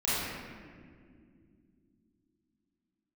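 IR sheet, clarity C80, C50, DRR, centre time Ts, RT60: −1.5 dB, −5.0 dB, −11.0 dB, 141 ms, non-exponential decay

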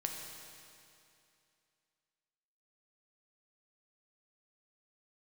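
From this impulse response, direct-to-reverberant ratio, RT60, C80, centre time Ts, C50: 1.0 dB, 2.6 s, 3.5 dB, 88 ms, 2.5 dB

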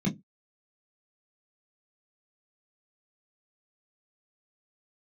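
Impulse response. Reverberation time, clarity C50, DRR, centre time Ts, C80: non-exponential decay, 19.5 dB, −1.0 dB, 21 ms, 29.5 dB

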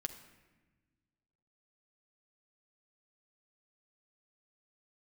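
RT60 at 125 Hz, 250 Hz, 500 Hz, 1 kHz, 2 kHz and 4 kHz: 2.1, 2.0, 1.3, 1.1, 1.2, 0.85 seconds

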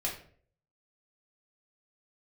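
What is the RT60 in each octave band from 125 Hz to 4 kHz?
0.70, 0.55, 0.60, 0.45, 0.45, 0.35 seconds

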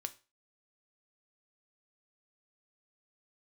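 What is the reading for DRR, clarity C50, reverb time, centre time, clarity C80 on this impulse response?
9.0 dB, 18.0 dB, 0.30 s, 4 ms, 23.5 dB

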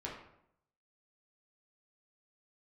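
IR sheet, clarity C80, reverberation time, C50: 7.5 dB, 0.75 s, 4.0 dB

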